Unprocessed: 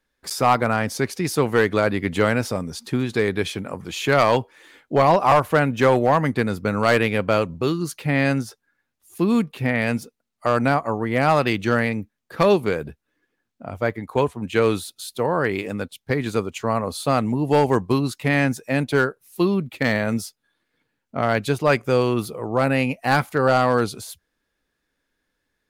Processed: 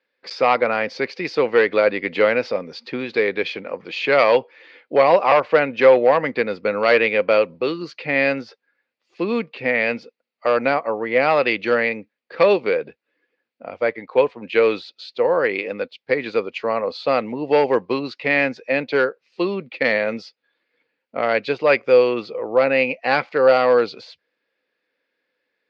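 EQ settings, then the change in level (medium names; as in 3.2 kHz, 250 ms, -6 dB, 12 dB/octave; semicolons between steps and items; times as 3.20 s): distance through air 120 m; cabinet simulation 290–5200 Hz, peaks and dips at 510 Hz +10 dB, 2 kHz +4 dB, 4.6 kHz +8 dB; peaking EQ 2.5 kHz +8 dB 0.52 oct; -1.0 dB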